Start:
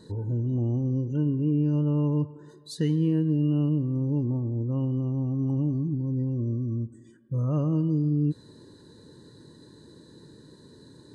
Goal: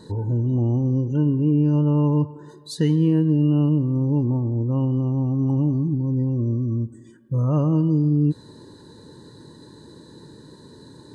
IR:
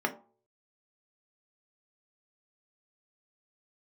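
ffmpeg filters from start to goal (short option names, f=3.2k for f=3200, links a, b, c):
-af "equalizer=f=890:w=2.9:g=6,volume=5.5dB"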